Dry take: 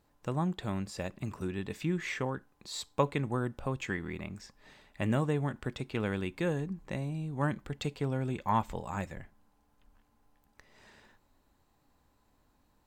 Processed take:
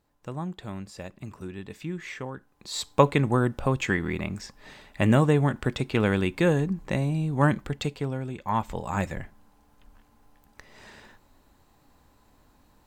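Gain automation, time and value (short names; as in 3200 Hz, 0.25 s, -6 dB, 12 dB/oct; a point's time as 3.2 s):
2.32 s -2 dB
2.89 s +9.5 dB
7.56 s +9.5 dB
8.33 s -1 dB
9.06 s +9.5 dB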